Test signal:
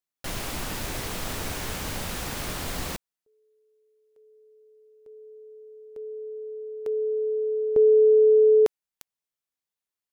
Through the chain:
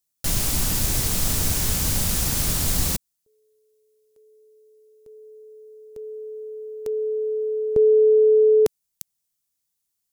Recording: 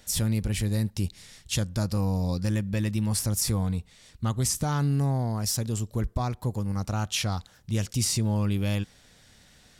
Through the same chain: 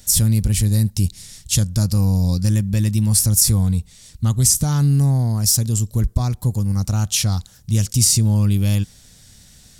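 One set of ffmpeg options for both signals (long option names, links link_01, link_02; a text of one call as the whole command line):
ffmpeg -i in.wav -af "bass=frequency=250:gain=11,treble=frequency=4000:gain=14" out.wav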